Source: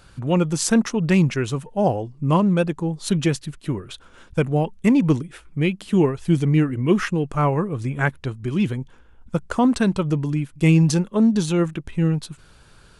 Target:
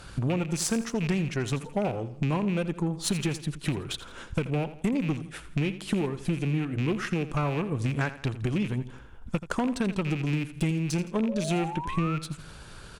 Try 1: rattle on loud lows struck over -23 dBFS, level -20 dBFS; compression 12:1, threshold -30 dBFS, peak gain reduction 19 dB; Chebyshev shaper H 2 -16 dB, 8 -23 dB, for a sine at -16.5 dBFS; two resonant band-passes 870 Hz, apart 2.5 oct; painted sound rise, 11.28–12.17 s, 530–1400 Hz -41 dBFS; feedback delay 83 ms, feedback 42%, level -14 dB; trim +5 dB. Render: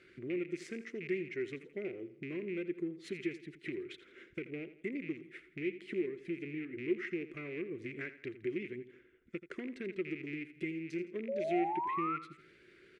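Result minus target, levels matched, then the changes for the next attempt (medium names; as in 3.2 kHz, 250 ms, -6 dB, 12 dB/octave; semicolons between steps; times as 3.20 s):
1 kHz band +4.5 dB
remove: two resonant band-passes 870 Hz, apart 2.5 oct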